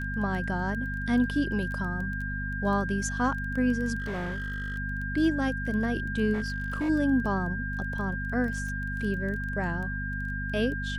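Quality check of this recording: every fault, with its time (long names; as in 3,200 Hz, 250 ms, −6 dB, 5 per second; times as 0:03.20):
surface crackle 12 per second −34 dBFS
mains hum 50 Hz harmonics 5 −34 dBFS
whistle 1,600 Hz −34 dBFS
0:04.00–0:04.78: clipping −29 dBFS
0:06.33–0:06.90: clipping −25.5 dBFS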